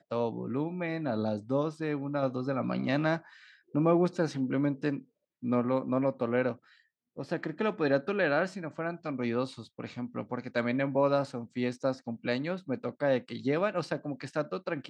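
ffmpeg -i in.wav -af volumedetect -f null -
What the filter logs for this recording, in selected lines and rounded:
mean_volume: -31.2 dB
max_volume: -12.5 dB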